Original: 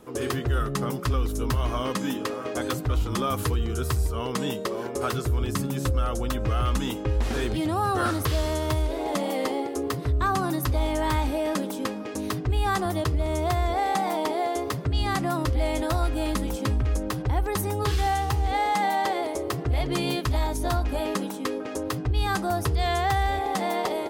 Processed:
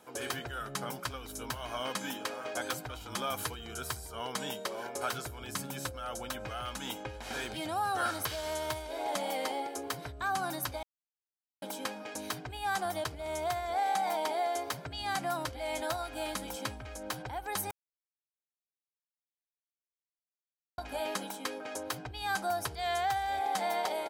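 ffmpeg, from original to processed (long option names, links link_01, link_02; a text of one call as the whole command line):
ffmpeg -i in.wav -filter_complex "[0:a]asettb=1/sr,asplit=3[link_01][link_02][link_03];[link_01]atrim=end=3.914[link_04];[link_02]atrim=start=3.91:end=4.37,asetpts=PTS-STARTPTS,afade=type=in:duration=0.004:curve=qsin,afade=type=out:start_time=0.456:duration=0.004:curve=qsin,bandreject=frequency=2600:width=12[link_05];[link_03]atrim=start=4.366[link_06];[link_04][link_05]acrossfade=duration=0.004:curve1=hsin:curve2=qsin[link_07];[link_07][link_06]acrossfade=duration=0.004:curve1=qsin:curve2=hsin,asplit=5[link_08][link_09][link_10][link_11][link_12];[link_08]atrim=end=10.83,asetpts=PTS-STARTPTS,afade=type=out:start_time=10.826:duration=0.004:curve=hsin[link_13];[link_09]atrim=start=10.83:end=11.62,asetpts=PTS-STARTPTS,volume=0[link_14];[link_10]atrim=start=11.62:end=17.71,asetpts=PTS-STARTPTS,afade=type=in:duration=0.004:curve=hsin,afade=type=out:start_time=6.086:duration=0.004:curve=hsin[link_15];[link_11]atrim=start=17.71:end=20.78,asetpts=PTS-STARTPTS,volume=0[link_16];[link_12]atrim=start=20.78,asetpts=PTS-STARTPTS,afade=type=in:duration=0.004:curve=hsin[link_17];[link_13][link_14][link_15][link_16][link_17]concat=n=5:v=0:a=1,aecho=1:1:1.3:0.45,acompressor=threshold=-21dB:ratio=6,highpass=frequency=690:poles=1,volume=-3dB" out.wav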